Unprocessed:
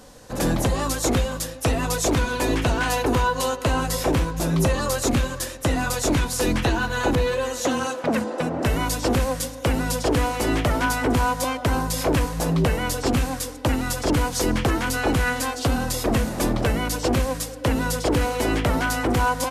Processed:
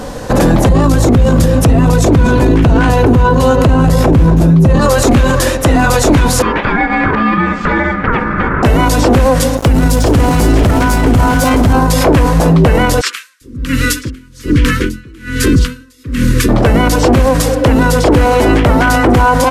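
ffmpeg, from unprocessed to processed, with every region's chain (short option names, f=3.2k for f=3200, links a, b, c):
-filter_complex "[0:a]asettb=1/sr,asplit=3[a][b][c];[a]atrim=end=0.694[d];[b]atrim=start=0.69:end=4.81,asetpts=PTS-STARTPTS,afade=t=in:d=0.004:c=qsin,afade=t=out:st=4.116:d=0.004:c=qsin,equalizer=f=120:w=0.42:g=13.5,aecho=1:1:236:0.178,atrim=end_sample=181692[e];[c]atrim=start=4.806[f];[d][e]acrossfade=d=0.004:c1=hsin:c2=qsin[g];[g][f]acrossfade=d=0.004:c1=qsin:c2=hsin,asettb=1/sr,asplit=3[h][i][j];[h]atrim=end=6.424[k];[i]atrim=start=6.42:end=8.63,asetpts=PTS-STARTPTS,afade=t=in:d=0.004:c=qsin,afade=t=out:st=2.206:d=0.004:c=qsin,bandpass=f=1.1k:t=q:w=1.2,aemphasis=mode=reproduction:type=50fm,aeval=exprs='val(0)*sin(2*PI*710*n/s)':c=same[l];[j]atrim=start=8.626[m];[k][l]acrossfade=d=0.004:c1=hsin:c2=qsin[n];[n][m]acrossfade=d=0.004:c1=qsin:c2=hsin,asettb=1/sr,asplit=3[o][p][q];[o]atrim=end=9.574[r];[p]atrim=start=9.57:end=11.73,asetpts=PTS-STARTPTS,afade=t=in:d=0.004:c=qsin,afade=t=out:st=2.156:d=0.004:c=qsin,bass=f=250:g=9,treble=f=4k:g=7,aecho=1:1:162|490|531:0.211|0.473|0.376,atrim=end_sample=95256,aeval=exprs='sgn(val(0))*max(abs(val(0))-0.0251,0)':c=same[s];[q]atrim=start=11.726[t];[r][s]acrossfade=d=0.004:c1=hsin:c2=qsin[u];[u][t]acrossfade=d=0.004:c1=qsin:c2=hsin,asettb=1/sr,asplit=3[v][w][x];[v]atrim=end=13.014[y];[w]atrim=start=13.01:end=16.49,asetpts=PTS-STARTPTS,afade=t=in:d=0.004:c=qsin,afade=t=out:st=3.476:d=0.004:c=qsin,asuperstop=centerf=740:order=4:qfactor=0.68,acrossover=split=1000[z][aa];[z]adelay=400[ab];[ab][aa]amix=inputs=2:normalize=0,atrim=end_sample=153468,aeval=exprs='val(0)*pow(10,-36*(0.5-0.5*cos(2*PI*1.2*n/s))/20)':c=same[ac];[x]atrim=start=16.486[ad];[y][ac]acrossfade=d=0.004:c1=hsin:c2=qsin[ae];[ae][ad]acrossfade=d=0.004:c1=qsin:c2=hsin,highshelf=f=2.7k:g=-10,alimiter=level_in=25dB:limit=-1dB:release=50:level=0:latency=1,volume=-1dB"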